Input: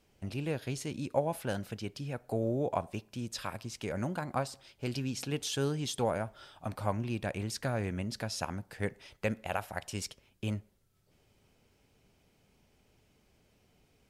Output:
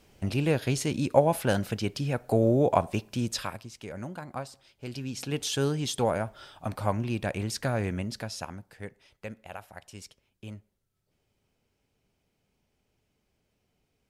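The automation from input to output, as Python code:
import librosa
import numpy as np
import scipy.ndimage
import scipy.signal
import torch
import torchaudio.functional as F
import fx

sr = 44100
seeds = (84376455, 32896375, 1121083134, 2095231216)

y = fx.gain(x, sr, db=fx.line((3.3, 9.0), (3.7, -3.5), (4.84, -3.5), (5.42, 4.5), (7.92, 4.5), (8.93, -7.5)))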